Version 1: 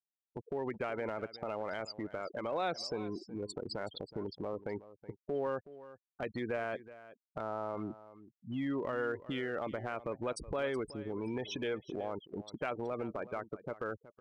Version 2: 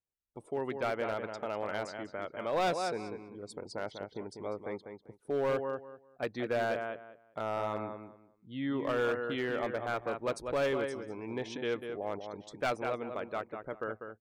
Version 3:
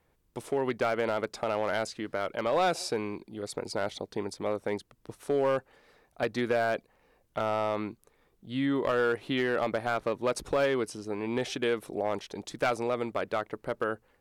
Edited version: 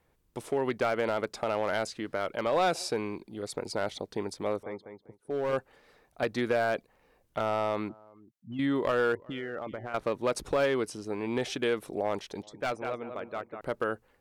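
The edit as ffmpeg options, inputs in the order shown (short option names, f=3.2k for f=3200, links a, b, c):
-filter_complex "[1:a]asplit=2[a][b];[0:a]asplit=2[c][d];[2:a]asplit=5[e][f][g][h][i];[e]atrim=end=4.632[j];[a]atrim=start=4.628:end=5.532[k];[f]atrim=start=5.528:end=7.892[l];[c]atrim=start=7.888:end=8.592[m];[g]atrim=start=8.588:end=9.152[n];[d]atrim=start=9.148:end=9.942[o];[h]atrim=start=9.938:end=12.432[p];[b]atrim=start=12.428:end=13.612[q];[i]atrim=start=13.608[r];[j][k]acrossfade=d=0.004:c1=hsin:c2=hsin[s];[s][l]acrossfade=d=0.004:c1=hsin:c2=hsin[t];[t][m]acrossfade=d=0.004:c1=hsin:c2=hsin[u];[u][n]acrossfade=d=0.004:c1=hsin:c2=hsin[v];[v][o]acrossfade=d=0.004:c1=hsin:c2=hsin[w];[w][p]acrossfade=d=0.004:c1=hsin:c2=hsin[x];[x][q]acrossfade=d=0.004:c1=hsin:c2=hsin[y];[y][r]acrossfade=d=0.004:c1=hsin:c2=hsin"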